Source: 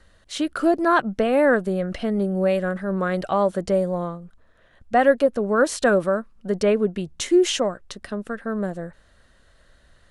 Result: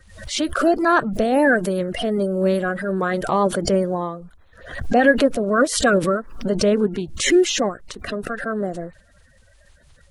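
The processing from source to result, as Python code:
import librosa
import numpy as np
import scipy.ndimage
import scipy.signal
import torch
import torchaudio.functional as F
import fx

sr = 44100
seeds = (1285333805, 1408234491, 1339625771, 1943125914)

y = fx.spec_quant(x, sr, step_db=30)
y = fx.high_shelf(y, sr, hz=9400.0, db=10.0, at=(0.75, 3.4))
y = fx.pre_swell(y, sr, db_per_s=86.0)
y = F.gain(torch.from_numpy(y), 2.0).numpy()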